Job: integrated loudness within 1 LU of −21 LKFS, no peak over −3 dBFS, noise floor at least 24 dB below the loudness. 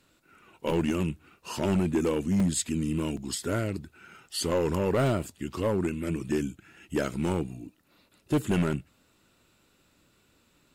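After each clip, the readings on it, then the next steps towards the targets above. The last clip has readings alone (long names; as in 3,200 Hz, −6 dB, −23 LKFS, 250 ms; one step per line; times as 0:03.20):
share of clipped samples 1.5%; peaks flattened at −19.5 dBFS; number of dropouts 3; longest dropout 3.1 ms; integrated loudness −29.0 LKFS; sample peak −19.5 dBFS; target loudness −21.0 LKFS
→ clipped peaks rebuilt −19.5 dBFS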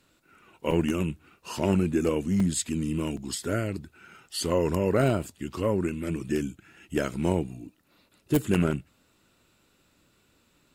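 share of clipped samples 0.0%; number of dropouts 3; longest dropout 3.1 ms
→ repair the gap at 0:00.71/0:02.40/0:03.17, 3.1 ms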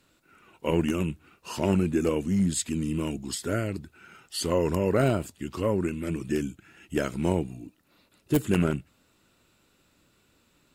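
number of dropouts 0; integrated loudness −28.0 LKFS; sample peak −10.5 dBFS; target loudness −21.0 LKFS
→ level +7 dB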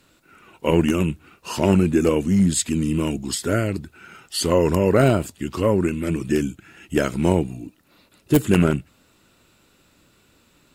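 integrated loudness −21.0 LKFS; sample peak −3.5 dBFS; background noise floor −59 dBFS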